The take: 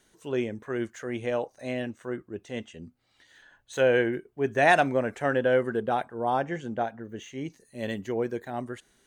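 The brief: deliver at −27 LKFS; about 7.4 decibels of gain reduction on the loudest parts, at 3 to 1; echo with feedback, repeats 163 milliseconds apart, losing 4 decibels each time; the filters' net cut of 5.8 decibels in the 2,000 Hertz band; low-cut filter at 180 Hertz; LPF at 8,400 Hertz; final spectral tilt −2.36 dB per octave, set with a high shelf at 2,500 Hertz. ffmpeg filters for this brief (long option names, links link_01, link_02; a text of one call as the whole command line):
ffmpeg -i in.wav -af "highpass=180,lowpass=8400,equalizer=frequency=2000:width_type=o:gain=-5,highshelf=frequency=2500:gain=-6,acompressor=threshold=-28dB:ratio=3,aecho=1:1:163|326|489|652|815|978|1141|1304|1467:0.631|0.398|0.25|0.158|0.0994|0.0626|0.0394|0.0249|0.0157,volume=5.5dB" out.wav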